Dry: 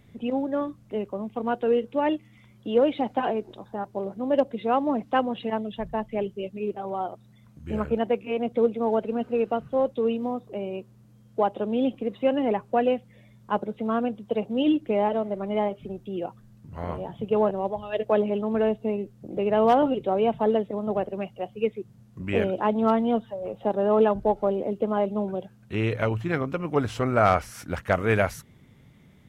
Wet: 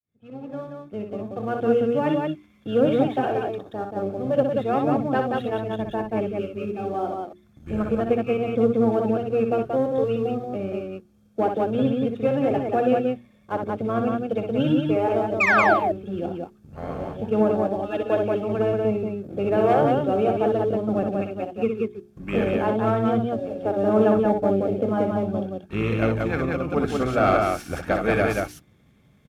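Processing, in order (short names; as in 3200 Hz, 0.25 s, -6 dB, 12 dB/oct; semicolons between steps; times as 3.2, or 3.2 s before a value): opening faded in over 1.66 s; painted sound fall, 15.4–15.74, 590–2600 Hz -18 dBFS; sample leveller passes 1; notch comb 990 Hz; harmoniser -12 st -7 dB; notches 60/120/180/240/300/360/420 Hz; loudspeakers at several distances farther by 21 m -6 dB, 62 m -3 dB; gain -3 dB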